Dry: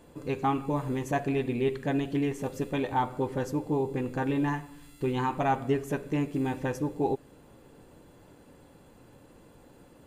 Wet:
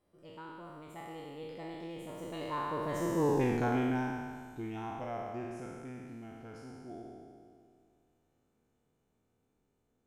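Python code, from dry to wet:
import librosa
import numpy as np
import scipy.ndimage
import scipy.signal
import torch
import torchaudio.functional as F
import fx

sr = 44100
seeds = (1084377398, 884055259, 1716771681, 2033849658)

y = fx.spec_trails(x, sr, decay_s=2.12)
y = fx.doppler_pass(y, sr, speed_mps=52, closest_m=15.0, pass_at_s=3.44)
y = y * librosa.db_to_amplitude(-1.5)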